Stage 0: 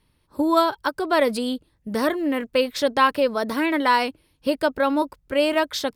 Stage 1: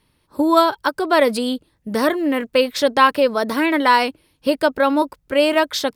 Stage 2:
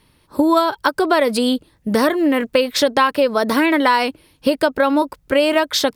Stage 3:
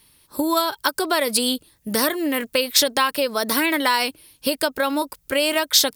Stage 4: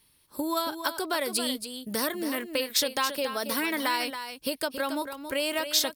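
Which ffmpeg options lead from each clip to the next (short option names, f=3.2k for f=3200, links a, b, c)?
-af "lowshelf=f=96:g=-7.5,volume=4.5dB"
-af "acompressor=threshold=-20dB:ratio=4,volume=7dB"
-af "crystalizer=i=5:c=0,volume=-7.5dB"
-af "aecho=1:1:276:0.355,volume=-8.5dB"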